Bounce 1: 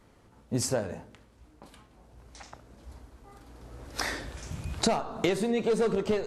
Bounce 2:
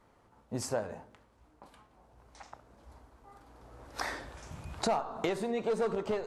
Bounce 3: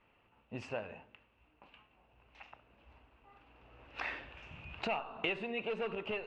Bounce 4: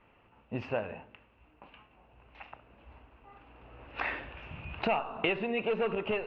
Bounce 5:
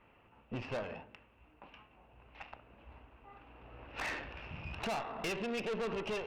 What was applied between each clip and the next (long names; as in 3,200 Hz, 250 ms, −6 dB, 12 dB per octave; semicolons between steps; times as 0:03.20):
parametric band 920 Hz +8.5 dB 1.8 octaves; level −8.5 dB
low-pass with resonance 2,700 Hz, resonance Q 12; level −7.5 dB
high-frequency loss of the air 270 metres; level +8 dB
tube saturation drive 35 dB, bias 0.55; level +1.5 dB